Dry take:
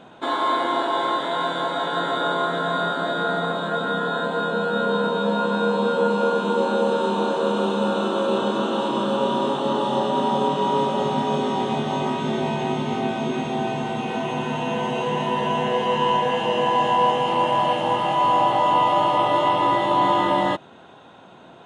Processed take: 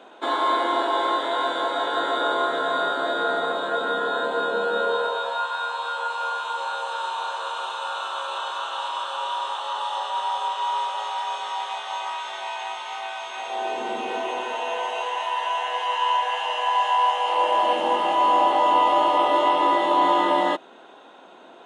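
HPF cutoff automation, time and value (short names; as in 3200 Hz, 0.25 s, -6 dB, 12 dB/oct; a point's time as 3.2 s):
HPF 24 dB/oct
4.7 s 300 Hz
5.49 s 840 Hz
13.3 s 840 Hz
13.91 s 300 Hz
15.31 s 730 Hz
17.11 s 730 Hz
17.78 s 270 Hz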